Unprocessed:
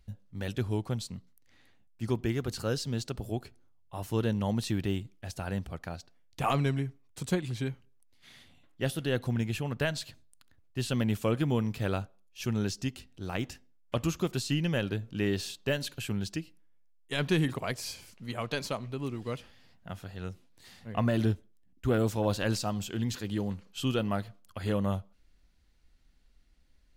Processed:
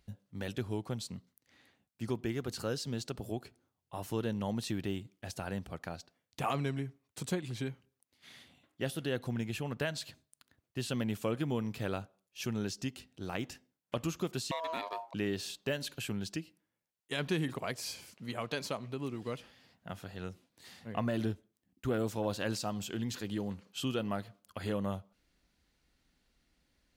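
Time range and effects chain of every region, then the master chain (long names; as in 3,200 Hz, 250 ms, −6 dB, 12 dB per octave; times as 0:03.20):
0:14.51–0:15.14: parametric band 440 Hz −5.5 dB 2.6 octaves + ring modulation 810 Hz
whole clip: high-pass filter 210 Hz 6 dB per octave; low-shelf EQ 400 Hz +3 dB; downward compressor 1.5 to 1, threshold −38 dBFS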